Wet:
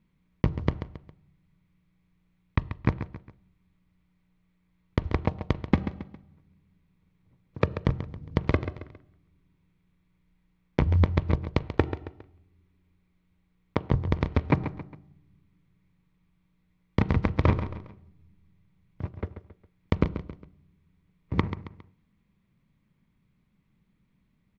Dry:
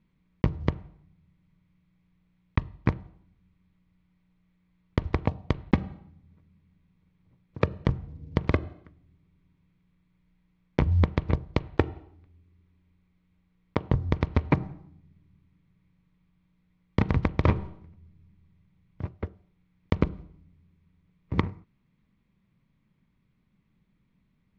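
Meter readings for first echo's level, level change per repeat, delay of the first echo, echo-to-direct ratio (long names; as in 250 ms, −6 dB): −11.0 dB, −8.0 dB, 136 ms, −10.5 dB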